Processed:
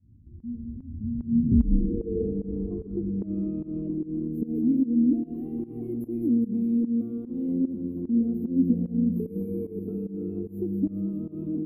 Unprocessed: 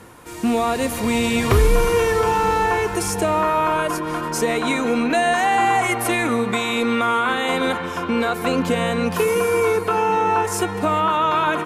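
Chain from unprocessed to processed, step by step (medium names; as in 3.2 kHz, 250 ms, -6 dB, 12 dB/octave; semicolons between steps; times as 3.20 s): inverse Chebyshev band-stop 840–9500 Hz, stop band 60 dB; bass shelf 290 Hz -6.5 dB; on a send: feedback echo behind a high-pass 205 ms, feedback 55%, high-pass 3.3 kHz, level -7 dB; on the sum: reverberation RT60 0.30 s, pre-delay 81 ms, DRR 13 dB; in parallel at -2 dB: compression, threshold -36 dBFS, peak gain reduction 17 dB; on the sum: low-pass sweep 100 Hz -> 11 kHz, 1.03–4.41 s; volume shaper 149 bpm, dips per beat 1, -20 dB, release 171 ms; graphic EQ 125/250/1000/2000/8000 Hz -8/+8/+7/+4/-5 dB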